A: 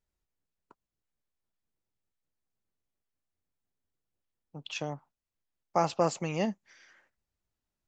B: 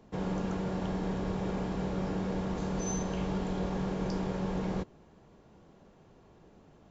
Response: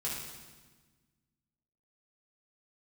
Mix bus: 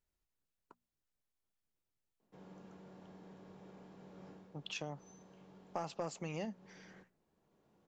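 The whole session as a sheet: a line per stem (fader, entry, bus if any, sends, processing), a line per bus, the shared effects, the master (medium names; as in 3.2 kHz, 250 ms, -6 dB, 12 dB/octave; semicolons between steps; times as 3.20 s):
-2.5 dB, 0.00 s, no send, none
4.06 s -21.5 dB -> 4.84 s -13.5 dB, 2.20 s, no send, high-pass 120 Hz 12 dB/octave; auto duck -12 dB, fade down 0.25 s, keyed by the first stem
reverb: none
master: hum notches 60/120/180/240 Hz; saturation -19 dBFS, distortion -19 dB; compression 3:1, threshold -40 dBFS, peak gain reduction 11 dB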